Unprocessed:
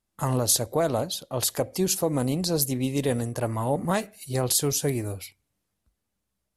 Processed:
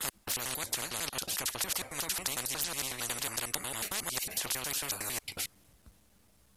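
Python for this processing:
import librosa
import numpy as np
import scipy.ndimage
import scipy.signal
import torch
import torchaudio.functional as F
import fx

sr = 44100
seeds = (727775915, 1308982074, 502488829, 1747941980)

y = fx.block_reorder(x, sr, ms=91.0, group=3)
y = fx.spectral_comp(y, sr, ratio=10.0)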